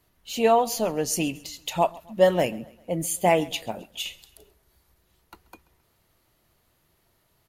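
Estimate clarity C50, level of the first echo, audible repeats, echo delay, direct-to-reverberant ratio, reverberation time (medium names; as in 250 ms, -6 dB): no reverb, -22.5 dB, 2, 133 ms, no reverb, no reverb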